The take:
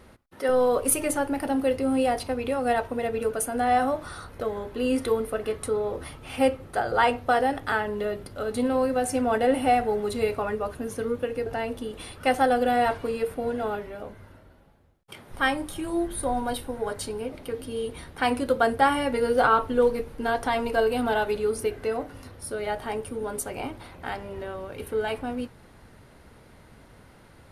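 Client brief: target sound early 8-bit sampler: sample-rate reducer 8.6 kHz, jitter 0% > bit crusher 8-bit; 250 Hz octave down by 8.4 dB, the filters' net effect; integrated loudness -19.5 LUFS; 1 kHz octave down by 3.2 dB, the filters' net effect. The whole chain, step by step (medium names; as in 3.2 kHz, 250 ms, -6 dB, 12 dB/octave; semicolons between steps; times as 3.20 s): peaking EQ 250 Hz -9 dB; peaking EQ 1 kHz -4 dB; sample-rate reducer 8.6 kHz, jitter 0%; bit crusher 8-bit; trim +10 dB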